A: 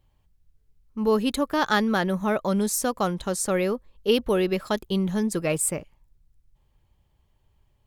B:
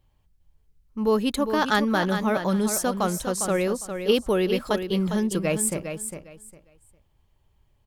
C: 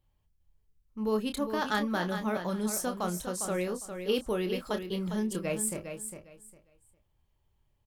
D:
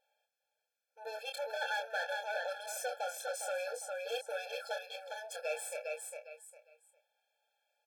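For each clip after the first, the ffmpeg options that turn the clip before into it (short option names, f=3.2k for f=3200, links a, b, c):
-af "aecho=1:1:405|810|1215:0.398|0.0836|0.0176"
-filter_complex "[0:a]highshelf=f=11k:g=3.5,asplit=2[a][b];[b]adelay=28,volume=-8.5dB[c];[a][c]amix=inputs=2:normalize=0,volume=-8.5dB"
-filter_complex "[0:a]asubboost=boost=5.5:cutoff=170,asplit=2[a][b];[b]highpass=f=720:p=1,volume=25dB,asoftclip=type=tanh:threshold=-16.5dB[c];[a][c]amix=inputs=2:normalize=0,lowpass=f=3.3k:p=1,volume=-6dB,afftfilt=real='re*eq(mod(floor(b*sr/1024/450),2),1)':imag='im*eq(mod(floor(b*sr/1024/450),2),1)':win_size=1024:overlap=0.75,volume=-8.5dB"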